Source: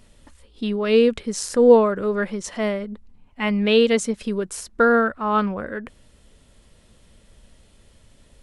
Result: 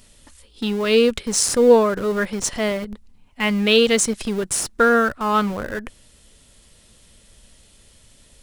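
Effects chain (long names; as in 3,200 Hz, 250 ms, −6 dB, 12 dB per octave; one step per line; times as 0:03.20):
high-shelf EQ 2,800 Hz +11.5 dB
in parallel at −12 dB: comparator with hysteresis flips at −25.5 dBFS
on the sum: level −1 dB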